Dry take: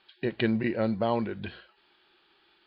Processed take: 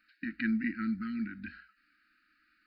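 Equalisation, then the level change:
linear-phase brick-wall band-stop 320–1,200 Hz
parametric band 110 Hz −10 dB 0.52 octaves
phaser with its sweep stopped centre 670 Hz, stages 8
0.0 dB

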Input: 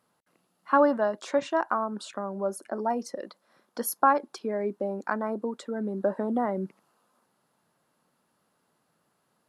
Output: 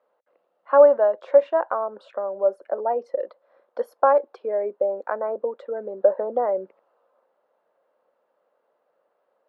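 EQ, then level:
high-pass with resonance 530 Hz, resonance Q 4.9
high-frequency loss of the air 480 metres
parametric band 6,200 Hz +3.5 dB 0.77 octaves
0.0 dB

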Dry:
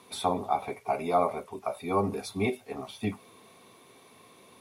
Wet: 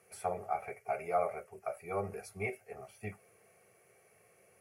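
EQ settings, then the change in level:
dynamic equaliser 1,700 Hz, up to +6 dB, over −42 dBFS, Q 0.89
phaser with its sweep stopped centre 1,000 Hz, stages 6
−6.0 dB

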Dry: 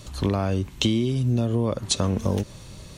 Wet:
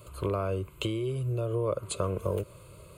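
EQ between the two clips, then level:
high-pass filter 160 Hz 6 dB per octave
parametric band 3,600 Hz −14 dB 0.81 octaves
phaser with its sweep stopped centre 1,200 Hz, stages 8
0.0 dB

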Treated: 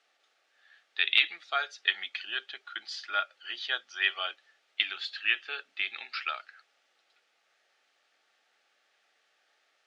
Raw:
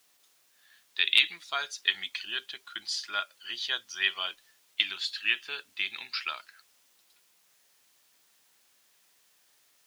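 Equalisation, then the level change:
high-pass filter 570 Hz 12 dB per octave
Butterworth band-reject 1,000 Hz, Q 4.6
head-to-tape spacing loss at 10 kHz 30 dB
+7.5 dB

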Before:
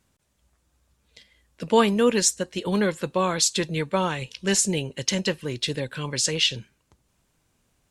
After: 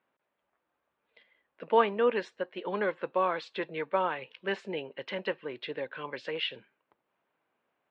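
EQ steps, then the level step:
high-pass filter 500 Hz 12 dB per octave
low-pass filter 3,400 Hz 12 dB per octave
high-frequency loss of the air 480 metres
0.0 dB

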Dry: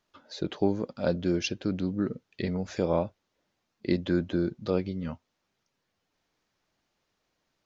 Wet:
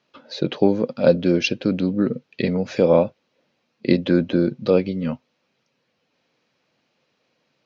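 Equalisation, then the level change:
loudspeaker in its box 130–5,900 Hz, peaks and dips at 140 Hz +7 dB, 240 Hz +6 dB, 510 Hz +8 dB, 2,500 Hz +6 dB, 3,700 Hz +5 dB
notch filter 3,600 Hz, Q 14
+6.5 dB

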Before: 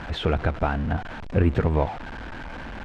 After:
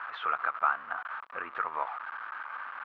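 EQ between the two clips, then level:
four-pole ladder band-pass 1,300 Hz, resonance 75%
high-frequency loss of the air 75 metres
+8.0 dB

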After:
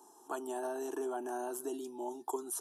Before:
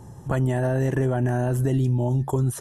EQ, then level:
high-pass filter 360 Hz 24 dB per octave
high-shelf EQ 5,800 Hz +5 dB
phaser with its sweep stopped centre 540 Hz, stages 6
−6.0 dB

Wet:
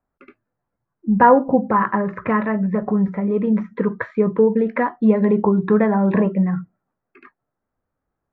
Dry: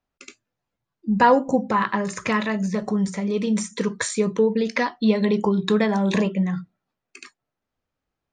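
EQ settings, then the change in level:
low-pass filter 1,700 Hz 24 dB per octave
+4.0 dB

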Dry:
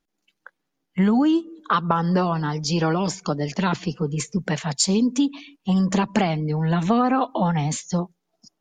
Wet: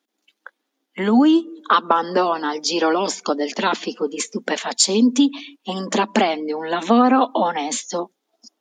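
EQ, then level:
elliptic high-pass filter 230 Hz, stop band 40 dB
parametric band 3,500 Hz +5 dB 0.36 octaves
+5.5 dB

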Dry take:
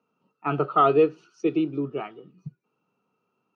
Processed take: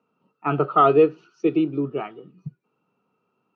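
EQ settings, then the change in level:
high-frequency loss of the air 130 metres
+3.5 dB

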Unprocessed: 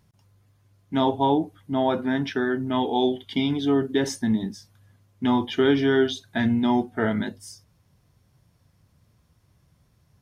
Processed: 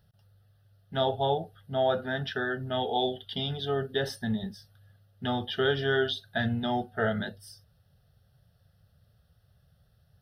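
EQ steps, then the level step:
phaser with its sweep stopped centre 1,500 Hz, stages 8
0.0 dB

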